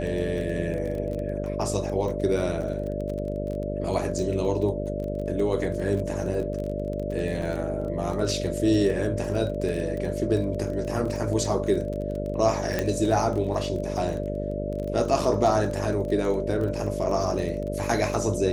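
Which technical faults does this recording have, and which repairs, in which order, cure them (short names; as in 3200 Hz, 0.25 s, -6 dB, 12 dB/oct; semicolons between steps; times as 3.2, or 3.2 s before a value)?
buzz 50 Hz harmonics 13 -31 dBFS
crackle 21/s -31 dBFS
tone 590 Hz -32 dBFS
7.42 gap 3.7 ms
12.79 pop -11 dBFS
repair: de-click; notch 590 Hz, Q 30; de-hum 50 Hz, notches 13; interpolate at 7.42, 3.7 ms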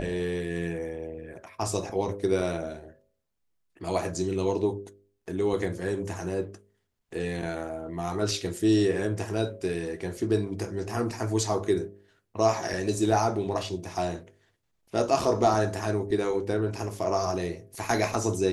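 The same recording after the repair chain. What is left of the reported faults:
none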